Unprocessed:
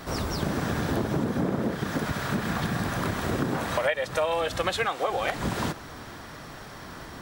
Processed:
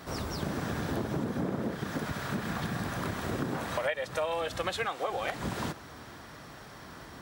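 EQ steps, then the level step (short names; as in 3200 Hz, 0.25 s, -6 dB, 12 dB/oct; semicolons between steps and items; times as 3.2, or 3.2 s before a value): HPF 46 Hz; -5.5 dB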